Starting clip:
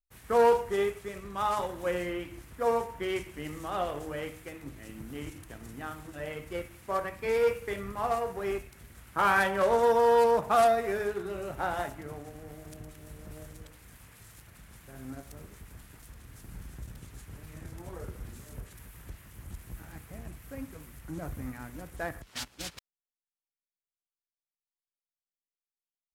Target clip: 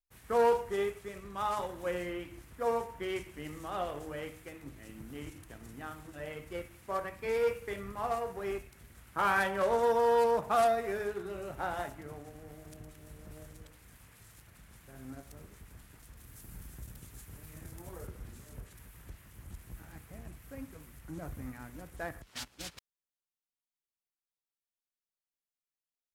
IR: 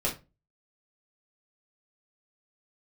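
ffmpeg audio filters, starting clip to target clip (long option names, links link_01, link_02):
-filter_complex "[0:a]asettb=1/sr,asplit=3[link_01][link_02][link_03];[link_01]atrim=end=16.174[link_04];[link_02]atrim=start=16.17:end=18.07,asetpts=PTS-STARTPTS,afade=type=in:duration=0.004:curve=qsin,afade=type=out:start_time=1.896:duration=0.004:curve=qsin,highshelf=frequency=8600:gain=11[link_05];[link_03]atrim=start=18.066[link_06];[link_04][link_05]acrossfade=duration=0.004:curve1=hsin:curve2=qsin[link_07];[link_07][link_06]acrossfade=duration=0.004:curve1=qsin:curve2=hsin,volume=-4dB"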